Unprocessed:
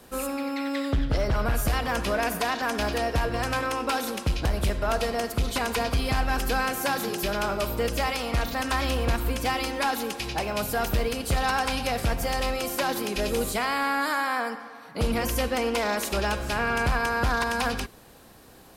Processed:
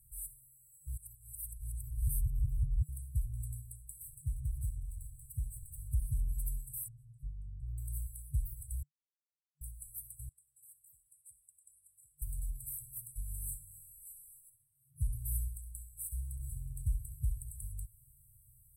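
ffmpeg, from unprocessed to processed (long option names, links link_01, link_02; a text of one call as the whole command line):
ffmpeg -i in.wav -filter_complex "[0:a]asettb=1/sr,asplit=3[link_01][link_02][link_03];[link_01]atrim=end=4.024[link_04];[link_02]atrim=start=4.02:end=5.79,asetpts=PTS-STARTPTS,afade=type=in:duration=0.004:curve=qsin,afade=type=out:start_time=1.766:duration=0.004:curve=qsin,asplit=2[link_05][link_06];[link_06]highpass=frequency=720:poles=1,volume=22dB,asoftclip=type=tanh:threshold=-15dB[link_07];[link_05][link_07]amix=inputs=2:normalize=0,lowpass=frequency=1600:poles=1,volume=-6dB[link_08];[link_03]atrim=start=5.786[link_09];[link_04][link_08]acrossfade=duration=0.004:curve1=hsin:curve2=qsin[link_10];[link_10][link_09]acrossfade=duration=0.004:curve1=qsin:curve2=hsin,asettb=1/sr,asplit=3[link_11][link_12][link_13];[link_11]atrim=end=6.884[link_14];[link_12]atrim=start=6.88:end=7.78,asetpts=PTS-STARTPTS,afade=type=in:duration=0.004:curve=qsin,afade=type=out:start_time=0.896:duration=0.004:curve=qsin,lowpass=1700[link_15];[link_13]atrim=start=7.776[link_16];[link_14][link_15]acrossfade=duration=0.004:curve1=hsin:curve2=qsin[link_17];[link_17][link_16]acrossfade=duration=0.004:curve1=qsin:curve2=hsin,asettb=1/sr,asplit=3[link_18][link_19][link_20];[link_18]atrim=end=10.294[link_21];[link_19]atrim=start=10.29:end=12.22,asetpts=PTS-STARTPTS,afade=type=in:duration=0.004:curve=qsin,afade=type=out:start_time=1.926:duration=0.004:curve=qsin,bandpass=frequency=5000:width_type=q:width=2.6[link_22];[link_20]atrim=start=12.216[link_23];[link_21][link_22]acrossfade=duration=0.004:curve1=hsin:curve2=qsin[link_24];[link_24][link_23]acrossfade=duration=0.004:curve1=qsin:curve2=hsin,asettb=1/sr,asplit=3[link_25][link_26][link_27];[link_25]atrim=end=14.214[link_28];[link_26]atrim=start=14.21:end=17.53,asetpts=PTS-STARTPTS,afade=type=in:duration=0.004:curve=qsin,afade=type=out:start_time=3.316:duration=0.004:curve=qsin,aecho=1:1:67|134|201|268:0.224|0.0963|0.0414|0.0178,atrim=end_sample=146412[link_29];[link_27]atrim=start=17.526[link_30];[link_28][link_29]acrossfade=duration=0.004:curve1=hsin:curve2=qsin[link_31];[link_31][link_30]acrossfade=duration=0.004:curve1=qsin:curve2=hsin,asplit=5[link_32][link_33][link_34][link_35][link_36];[link_32]atrim=end=0.872[link_37];[link_33]atrim=start=0.868:end=2.892,asetpts=PTS-STARTPTS,areverse[link_38];[link_34]atrim=start=2.888:end=8.83,asetpts=PTS-STARTPTS,afade=type=out:start_time=5.938:duration=0.004:curve=hsin[link_39];[link_35]atrim=start=8.83:end=9.61,asetpts=PTS-STARTPTS,volume=0[link_40];[link_36]atrim=start=9.61,asetpts=PTS-STARTPTS,afade=type=in:duration=0.004:curve=hsin[link_41];[link_37][link_38]acrossfade=duration=0.004:curve1=hsin:curve2=hsin[link_42];[link_39][link_40][link_41]concat=n=3:v=0:a=1[link_43];[link_42][link_43]acrossfade=duration=0.004:curve1=hsin:curve2=hsin,afftfilt=real='re*(1-between(b*sr/4096,140,7700))':imag='im*(1-between(b*sr/4096,140,7700))':win_size=4096:overlap=0.75,volume=-6dB" out.wav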